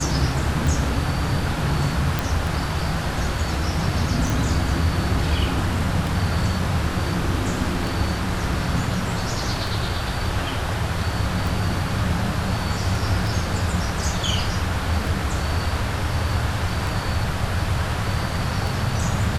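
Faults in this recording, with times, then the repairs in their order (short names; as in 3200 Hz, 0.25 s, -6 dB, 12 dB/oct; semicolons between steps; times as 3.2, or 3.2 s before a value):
tick 33 1/3 rpm
2.19 pop
4.3 pop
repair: de-click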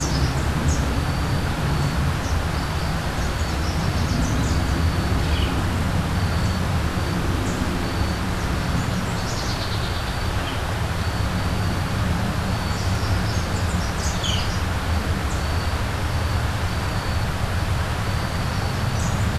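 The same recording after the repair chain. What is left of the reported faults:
none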